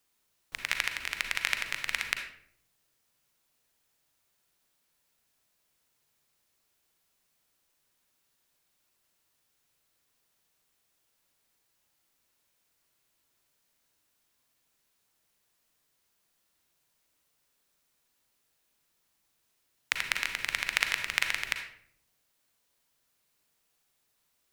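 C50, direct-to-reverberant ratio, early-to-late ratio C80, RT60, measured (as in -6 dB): 6.5 dB, 5.0 dB, 9.5 dB, 0.60 s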